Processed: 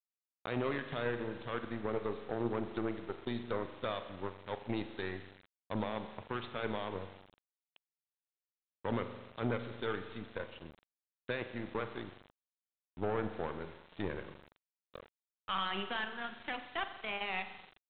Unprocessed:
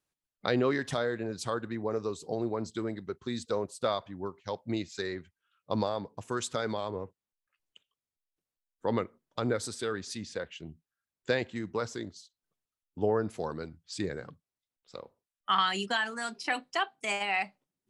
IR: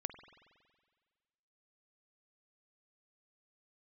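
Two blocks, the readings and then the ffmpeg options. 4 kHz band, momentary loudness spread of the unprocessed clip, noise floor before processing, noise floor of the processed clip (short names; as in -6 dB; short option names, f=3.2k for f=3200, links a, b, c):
-7.5 dB, 14 LU, under -85 dBFS, under -85 dBFS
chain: -filter_complex "[0:a]aeval=exprs='0.251*(cos(1*acos(clip(val(0)/0.251,-1,1)))-cos(1*PI/2))+0.00251*(cos(4*acos(clip(val(0)/0.251,-1,1)))-cos(4*PI/2))+0.0282*(cos(7*acos(clip(val(0)/0.251,-1,1)))-cos(7*PI/2))+0.00631*(cos(8*acos(clip(val(0)/0.251,-1,1)))-cos(8*PI/2))':c=same,dynaudnorm=f=130:g=11:m=14dB,alimiter=limit=-16.5dB:level=0:latency=1:release=11[a];[1:a]atrim=start_sample=2205,asetrate=48510,aresample=44100[b];[a][b]afir=irnorm=-1:irlink=0,aresample=8000,aeval=exprs='val(0)*gte(abs(val(0)),0.00531)':c=same,aresample=44100,volume=-4.5dB"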